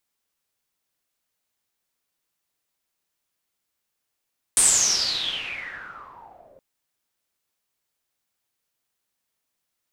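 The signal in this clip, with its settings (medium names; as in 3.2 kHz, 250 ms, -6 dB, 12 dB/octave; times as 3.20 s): swept filtered noise white, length 2.02 s lowpass, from 9.2 kHz, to 530 Hz, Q 11, exponential, gain ramp -26 dB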